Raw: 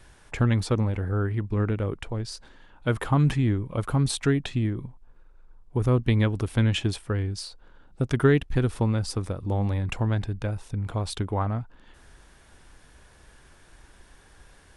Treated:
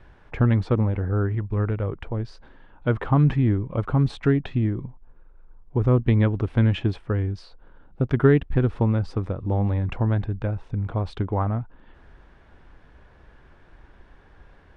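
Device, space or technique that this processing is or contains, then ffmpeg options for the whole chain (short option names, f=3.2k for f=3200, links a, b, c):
phone in a pocket: -filter_complex "[0:a]asettb=1/sr,asplit=3[a][b][c];[a]atrim=end=1.354[d];[b]atrim=start=1.35:end=1.94,asetpts=PTS-STARTPTS,afade=t=in:d=0.004:c=qsin,afade=t=out:st=0.586:d=0.004:c=qsin,equalizer=f=260:w=1.2:g=-6[e];[c]atrim=start=1.936[f];[d][e]acrossfade=d=0.004:c1=hsin:c2=qsin[g];[g][f]acrossfade=d=0.004:c1=qsin:c2=hsin,lowpass=3.3k,highshelf=f=2.3k:g=-9.5,volume=3dB"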